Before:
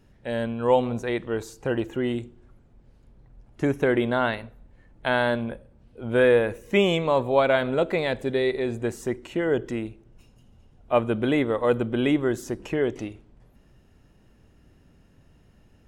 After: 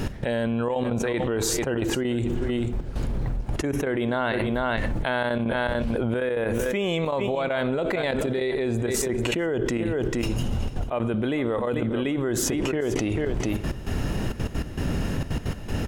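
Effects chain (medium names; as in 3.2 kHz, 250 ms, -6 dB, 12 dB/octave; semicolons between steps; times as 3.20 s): trance gate "x..xxxxxx.x." 198 bpm -12 dB; delay 443 ms -19 dB; level flattener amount 100%; trim -9 dB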